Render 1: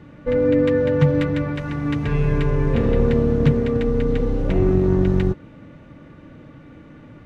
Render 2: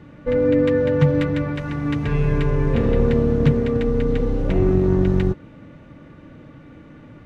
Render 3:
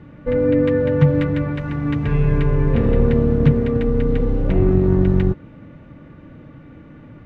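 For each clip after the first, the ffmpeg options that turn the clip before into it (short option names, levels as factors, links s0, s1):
-af anull
-af "bass=f=250:g=3,treble=f=4000:g=-9"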